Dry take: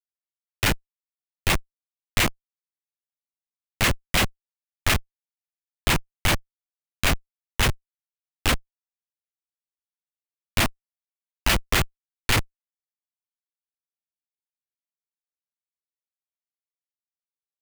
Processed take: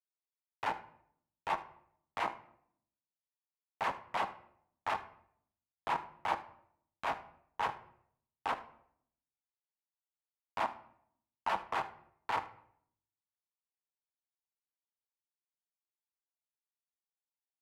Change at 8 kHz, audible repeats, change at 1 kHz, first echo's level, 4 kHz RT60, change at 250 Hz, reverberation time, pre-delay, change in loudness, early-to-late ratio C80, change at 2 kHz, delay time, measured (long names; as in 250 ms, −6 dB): below −30 dB, 1, −3.5 dB, −19.0 dB, 0.40 s, −21.5 dB, 0.65 s, 4 ms, −13.5 dB, 17.5 dB, −16.0 dB, 76 ms